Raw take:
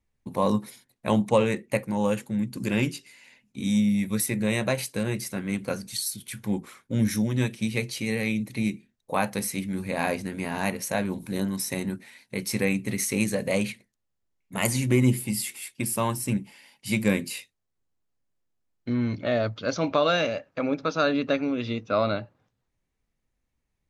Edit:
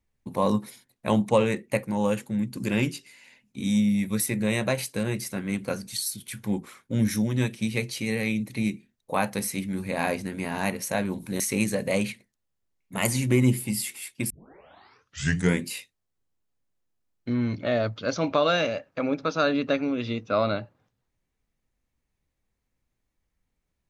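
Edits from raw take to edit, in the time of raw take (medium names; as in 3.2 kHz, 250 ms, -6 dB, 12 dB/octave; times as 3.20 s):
11.40–13.00 s: delete
15.90 s: tape start 1.35 s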